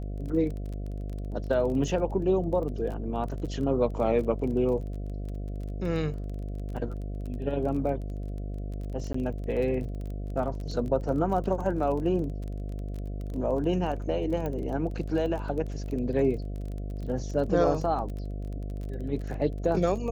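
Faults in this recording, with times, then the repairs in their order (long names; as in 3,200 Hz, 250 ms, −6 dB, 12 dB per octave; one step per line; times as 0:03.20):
mains buzz 50 Hz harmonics 14 −34 dBFS
surface crackle 21 per second −35 dBFS
0:09.13–0:09.14: drop-out 14 ms
0:14.46: click −21 dBFS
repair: click removal
hum removal 50 Hz, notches 14
repair the gap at 0:09.13, 14 ms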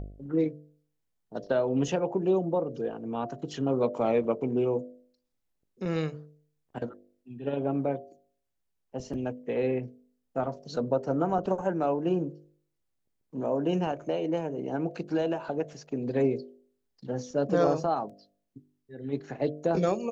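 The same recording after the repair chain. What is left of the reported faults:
none of them is left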